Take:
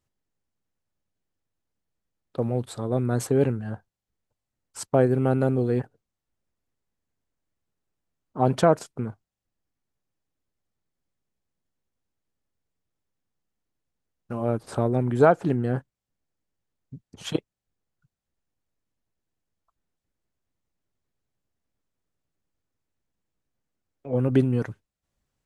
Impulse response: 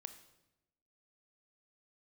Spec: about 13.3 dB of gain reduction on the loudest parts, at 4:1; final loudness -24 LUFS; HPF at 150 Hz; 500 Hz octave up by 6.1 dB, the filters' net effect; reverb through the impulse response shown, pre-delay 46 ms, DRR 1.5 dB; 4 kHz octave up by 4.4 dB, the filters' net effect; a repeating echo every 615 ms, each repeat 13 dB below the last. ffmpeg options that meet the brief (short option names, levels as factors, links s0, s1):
-filter_complex "[0:a]highpass=150,equalizer=f=500:t=o:g=7.5,equalizer=f=4000:t=o:g=5.5,acompressor=threshold=0.0708:ratio=4,aecho=1:1:615|1230|1845:0.224|0.0493|0.0108,asplit=2[s0][s1];[1:a]atrim=start_sample=2205,adelay=46[s2];[s1][s2]afir=irnorm=-1:irlink=0,volume=1.5[s3];[s0][s3]amix=inputs=2:normalize=0,volume=1.5"